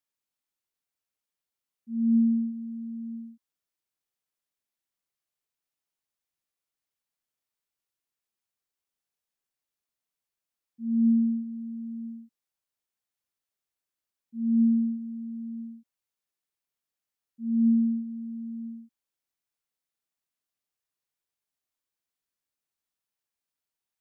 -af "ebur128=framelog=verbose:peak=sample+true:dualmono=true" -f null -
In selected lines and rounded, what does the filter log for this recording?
Integrated loudness:
  I:         -24.6 LUFS
  Threshold: -35.9 LUFS
Loudness range:
  LRA:        11.9 LU
  Threshold: -48.9 LUFS
  LRA low:   -39.8 LUFS
  LRA high:  -27.9 LUFS
Sample peak:
  Peak:      -16.3 dBFS
True peak:
  Peak:      -16.3 dBFS